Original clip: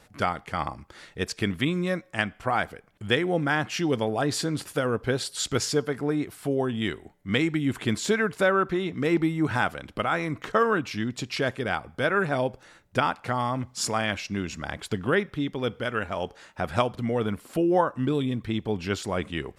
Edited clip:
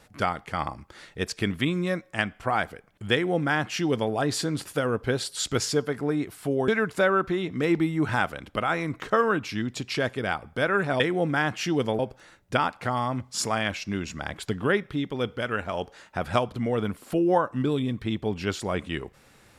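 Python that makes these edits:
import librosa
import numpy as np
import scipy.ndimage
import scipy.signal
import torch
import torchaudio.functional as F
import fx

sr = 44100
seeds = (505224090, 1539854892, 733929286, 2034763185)

y = fx.edit(x, sr, fx.duplicate(start_s=3.13, length_s=0.99, to_s=12.42),
    fx.cut(start_s=6.68, length_s=1.42), tone=tone)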